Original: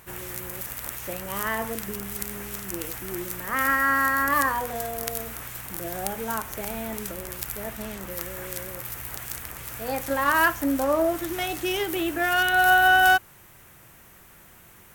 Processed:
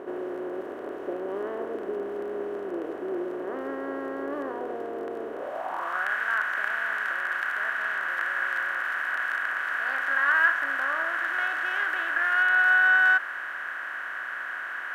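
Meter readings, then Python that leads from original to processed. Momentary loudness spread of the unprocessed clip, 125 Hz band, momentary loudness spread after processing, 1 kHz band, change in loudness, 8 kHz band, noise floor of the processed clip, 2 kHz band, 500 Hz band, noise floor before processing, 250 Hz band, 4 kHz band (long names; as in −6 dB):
14 LU, below −15 dB, 14 LU, −6.0 dB, −1.5 dB, below −20 dB, −36 dBFS, +2.0 dB, −2.5 dB, −51 dBFS, −6.0 dB, −9.5 dB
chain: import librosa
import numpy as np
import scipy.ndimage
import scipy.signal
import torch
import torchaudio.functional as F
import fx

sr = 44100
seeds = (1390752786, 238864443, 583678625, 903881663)

y = fx.bin_compress(x, sr, power=0.4)
y = fx.filter_sweep_bandpass(y, sr, from_hz=400.0, to_hz=1600.0, start_s=5.3, end_s=6.08, q=4.2)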